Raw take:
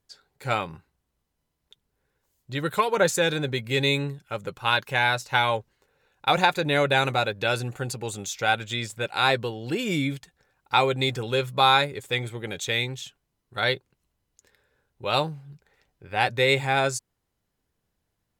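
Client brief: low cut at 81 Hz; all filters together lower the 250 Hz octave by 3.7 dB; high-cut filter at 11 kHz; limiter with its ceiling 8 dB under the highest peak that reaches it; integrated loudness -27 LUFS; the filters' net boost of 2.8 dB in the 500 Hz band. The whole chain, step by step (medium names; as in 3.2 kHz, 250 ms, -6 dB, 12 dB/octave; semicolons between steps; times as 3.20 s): high-pass 81 Hz; low-pass 11 kHz; peaking EQ 250 Hz -7.5 dB; peaking EQ 500 Hz +5 dB; trim -1.5 dB; peak limiter -12.5 dBFS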